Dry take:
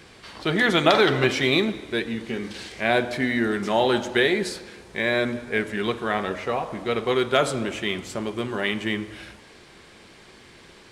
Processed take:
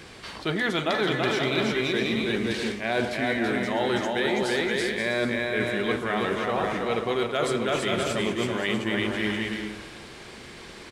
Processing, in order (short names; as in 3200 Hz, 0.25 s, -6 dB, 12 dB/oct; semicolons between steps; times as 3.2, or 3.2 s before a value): bouncing-ball echo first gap 0.33 s, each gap 0.6×, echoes 5; reverse; compressor 6:1, threshold -26 dBFS, peak gain reduction 13.5 dB; reverse; gain +3.5 dB